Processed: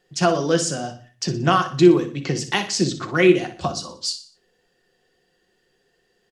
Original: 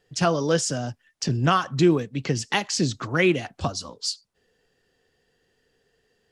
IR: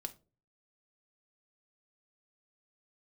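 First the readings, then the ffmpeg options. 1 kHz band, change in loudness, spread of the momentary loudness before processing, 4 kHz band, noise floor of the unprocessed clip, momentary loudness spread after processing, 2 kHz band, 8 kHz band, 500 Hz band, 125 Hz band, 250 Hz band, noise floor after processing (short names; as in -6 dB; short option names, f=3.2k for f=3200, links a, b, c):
+3.0 dB, +4.0 dB, 10 LU, +2.5 dB, -70 dBFS, 12 LU, +2.0 dB, +2.0 dB, +5.0 dB, 0.0 dB, +4.5 dB, -67 dBFS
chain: -filter_complex "[0:a]lowshelf=f=120:g=-7,aecho=1:1:60|120|180|240:0.251|0.1|0.0402|0.0161[a];[1:a]atrim=start_sample=2205[b];[a][b]afir=irnorm=-1:irlink=0,volume=4.5dB"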